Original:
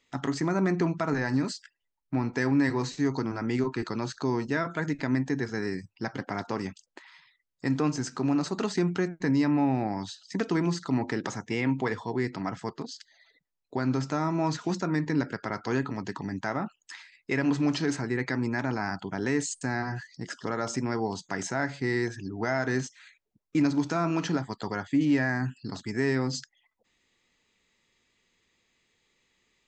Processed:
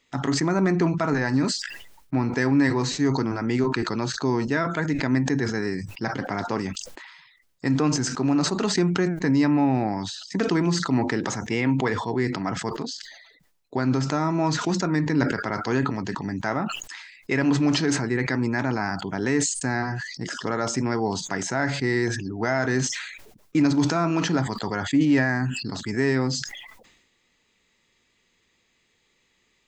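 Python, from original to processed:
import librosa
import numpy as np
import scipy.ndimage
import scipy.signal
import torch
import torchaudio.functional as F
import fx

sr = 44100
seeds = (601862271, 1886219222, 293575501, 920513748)

y = fx.sustainer(x, sr, db_per_s=54.0)
y = F.gain(torch.from_numpy(y), 4.0).numpy()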